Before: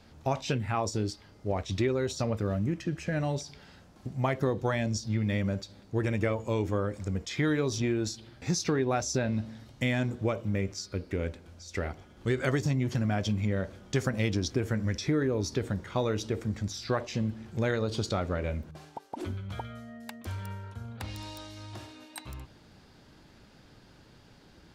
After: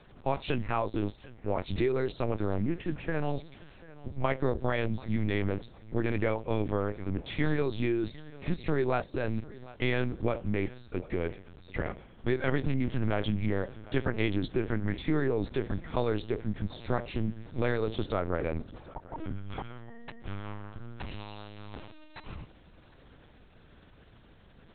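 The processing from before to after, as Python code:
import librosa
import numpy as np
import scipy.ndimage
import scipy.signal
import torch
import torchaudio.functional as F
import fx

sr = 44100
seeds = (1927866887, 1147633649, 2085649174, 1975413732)

y = fx.level_steps(x, sr, step_db=10, at=(9.03, 9.6))
y = fx.lowpass(y, sr, hz=2500.0, slope=12, at=(18.11, 19.46))
y = fx.echo_feedback(y, sr, ms=746, feedback_pct=25, wet_db=-20)
y = fx.lpc_vocoder(y, sr, seeds[0], excitation='pitch_kept', order=8)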